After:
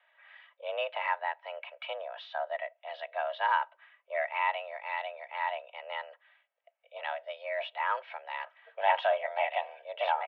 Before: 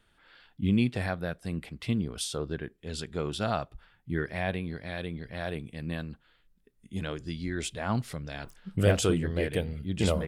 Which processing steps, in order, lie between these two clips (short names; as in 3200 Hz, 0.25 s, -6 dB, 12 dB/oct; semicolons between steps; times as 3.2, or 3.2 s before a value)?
comb 3 ms, depth 53%; in parallel at -8.5 dB: soft clip -27.5 dBFS, distortion -8 dB; on the sum: mistuned SSB +270 Hz 360–2700 Hz